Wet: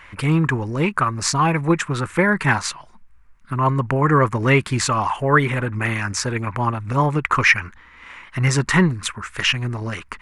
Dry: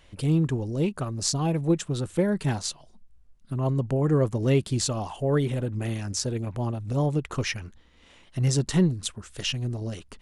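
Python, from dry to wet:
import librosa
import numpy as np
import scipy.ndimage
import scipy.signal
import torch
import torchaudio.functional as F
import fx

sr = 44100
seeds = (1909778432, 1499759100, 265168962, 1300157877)

y = fx.band_shelf(x, sr, hz=1500.0, db=16.0, octaves=1.7)
y = y * 10.0 ** (4.5 / 20.0)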